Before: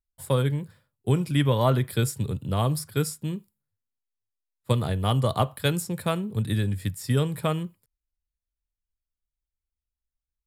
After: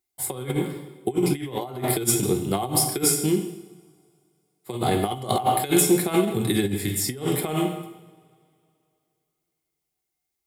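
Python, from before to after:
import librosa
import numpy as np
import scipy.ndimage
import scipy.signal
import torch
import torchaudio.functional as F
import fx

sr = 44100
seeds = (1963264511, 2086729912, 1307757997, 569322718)

y = scipy.signal.sosfilt(scipy.signal.butter(2, 120.0, 'highpass', fs=sr, output='sos'), x)
y = fx.rev_double_slope(y, sr, seeds[0], early_s=0.86, late_s=2.8, knee_db=-27, drr_db=4.0)
y = fx.over_compress(y, sr, threshold_db=-28.0, ratio=-0.5)
y = fx.high_shelf(y, sr, hz=3900.0, db=10.0)
y = fx.small_body(y, sr, hz=(360.0, 750.0, 2100.0), ring_ms=45, db=15)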